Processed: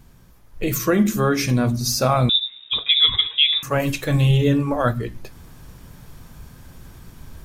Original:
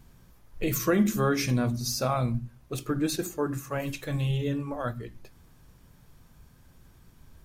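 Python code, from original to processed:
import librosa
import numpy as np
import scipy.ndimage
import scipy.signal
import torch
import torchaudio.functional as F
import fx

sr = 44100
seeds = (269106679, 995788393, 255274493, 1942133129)

y = fx.rider(x, sr, range_db=10, speed_s=2.0)
y = fx.freq_invert(y, sr, carrier_hz=3700, at=(2.29, 3.63))
y = y * librosa.db_to_amplitude(8.5)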